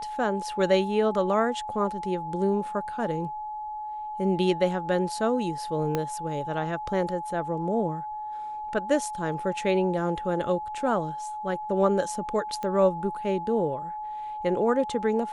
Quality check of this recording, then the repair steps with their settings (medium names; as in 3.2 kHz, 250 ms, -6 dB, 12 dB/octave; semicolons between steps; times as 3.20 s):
whine 850 Hz -32 dBFS
5.95 s: pop -13 dBFS
12.63 s: pop -20 dBFS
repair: de-click; band-stop 850 Hz, Q 30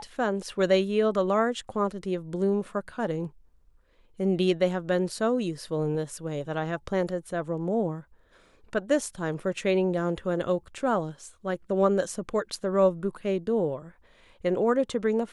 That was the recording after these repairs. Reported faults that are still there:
5.95 s: pop